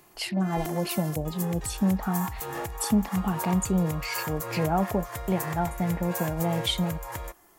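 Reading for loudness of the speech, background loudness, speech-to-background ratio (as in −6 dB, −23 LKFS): −28.5 LKFS, −35.5 LKFS, 7.0 dB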